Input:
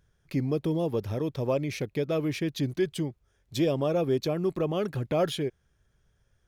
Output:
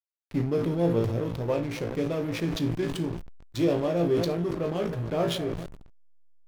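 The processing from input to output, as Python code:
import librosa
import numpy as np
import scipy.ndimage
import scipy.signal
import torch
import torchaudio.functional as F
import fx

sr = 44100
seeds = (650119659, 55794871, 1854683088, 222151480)

p1 = fx.reverse_delay(x, sr, ms=171, wet_db=-13.5)
p2 = fx.rider(p1, sr, range_db=3, speed_s=2.0)
p3 = p1 + (p2 * librosa.db_to_amplitude(1.0))
p4 = fx.comb_fb(p3, sr, f0_hz=57.0, decay_s=0.24, harmonics='all', damping=0.0, mix_pct=100)
p5 = p4 + fx.echo_heads(p4, sr, ms=139, heads='second and third', feedback_pct=49, wet_db=-20.5, dry=0)
p6 = fx.backlash(p5, sr, play_db=-32.0)
y = fx.sustainer(p6, sr, db_per_s=52.0)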